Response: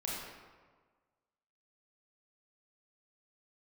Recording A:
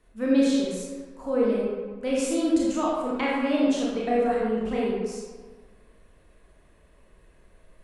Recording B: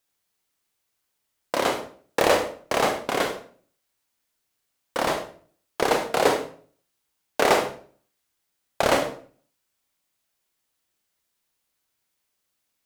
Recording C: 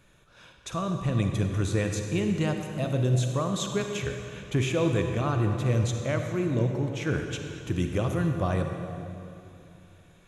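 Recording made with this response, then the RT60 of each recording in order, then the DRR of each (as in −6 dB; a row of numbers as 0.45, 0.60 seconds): A; 1.5, 0.45, 2.8 seconds; −5.5, 4.5, 4.0 decibels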